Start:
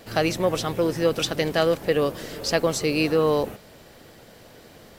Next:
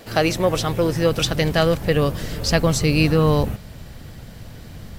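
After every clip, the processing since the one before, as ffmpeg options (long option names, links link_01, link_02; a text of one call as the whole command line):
ffmpeg -i in.wav -af "asubboost=boost=8.5:cutoff=150,volume=4dB" out.wav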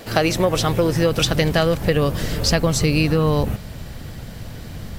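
ffmpeg -i in.wav -af "acompressor=threshold=-18dB:ratio=6,volume=4.5dB" out.wav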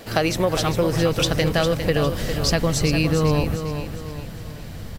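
ffmpeg -i in.wav -af "aecho=1:1:404|808|1212|1616|2020:0.376|0.158|0.0663|0.0278|0.0117,volume=-2.5dB" out.wav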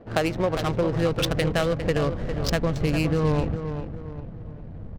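ffmpeg -i in.wav -af "adynamicsmooth=sensitivity=2:basefreq=520,volume=-3dB" out.wav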